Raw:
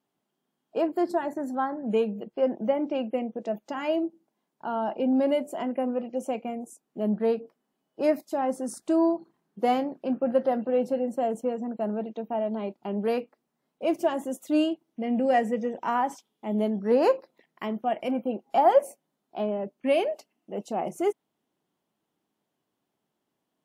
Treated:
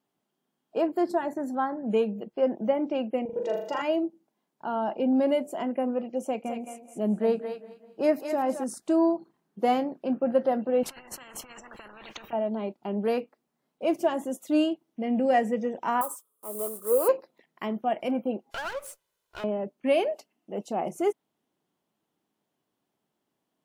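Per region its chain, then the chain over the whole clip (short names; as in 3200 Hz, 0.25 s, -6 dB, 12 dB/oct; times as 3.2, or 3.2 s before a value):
3.25–3.82 comb 2.1 ms, depth 89% + flutter echo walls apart 6.9 m, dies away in 0.62 s
6.24–8.64 thinning echo 0.216 s, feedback 18%, high-pass 920 Hz, level -4.5 dB + warbling echo 0.197 s, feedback 50%, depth 56 cents, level -19.5 dB
10.83–12.33 high shelf 7800 Hz -11.5 dB + negative-ratio compressor -39 dBFS + spectral compressor 10:1
16.01–17.09 block floating point 5-bit + EQ curve 110 Hz 0 dB, 170 Hz -23 dB, 310 Hz -11 dB, 510 Hz +1 dB, 800 Hz -13 dB, 1200 Hz +10 dB, 1800 Hz -19 dB, 5800 Hz -9 dB, 8900 Hz +15 dB
18.51–19.44 minimum comb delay 2 ms + tilt shelf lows -7 dB, about 910 Hz + compressor 2.5:1, threshold -37 dBFS
whole clip: dry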